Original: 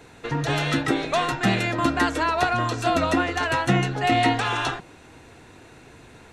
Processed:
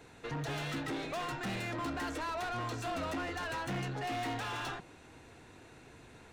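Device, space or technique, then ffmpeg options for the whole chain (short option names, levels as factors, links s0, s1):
saturation between pre-emphasis and de-emphasis: -af "highshelf=f=2500:g=8.5,asoftclip=type=tanh:threshold=0.0531,highshelf=f=2500:g=-8.5,volume=0.422"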